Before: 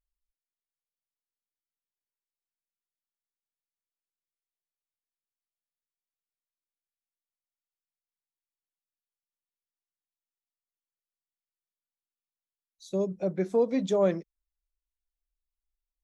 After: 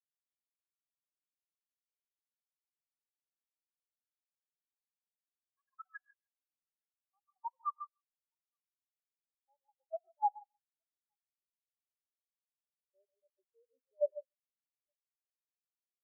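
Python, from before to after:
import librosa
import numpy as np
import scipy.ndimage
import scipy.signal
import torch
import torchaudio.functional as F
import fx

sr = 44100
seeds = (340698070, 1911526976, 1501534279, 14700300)

y = fx.air_absorb(x, sr, metres=350.0)
y = fx.echo_pitch(y, sr, ms=333, semitones=6, count=3, db_per_echo=-3.0)
y = scipy.signal.sosfilt(scipy.signal.butter(2, 1300.0, 'highpass', fs=sr, output='sos'), y)
y = fx.tilt_eq(y, sr, slope=-2.0)
y = fx.level_steps(y, sr, step_db=12)
y = fx.echo_multitap(y, sr, ms=(147, 869), db=(-7.0, -16.5))
y = fx.rev_gated(y, sr, seeds[0], gate_ms=180, shape='rising', drr_db=6.5)
y = fx.spectral_expand(y, sr, expansion=4.0)
y = y * librosa.db_to_amplitude(4.5)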